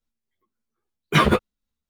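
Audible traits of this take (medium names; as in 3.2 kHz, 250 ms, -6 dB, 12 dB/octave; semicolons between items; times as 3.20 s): tremolo triangle 3.7 Hz, depth 45%; a shimmering, thickened sound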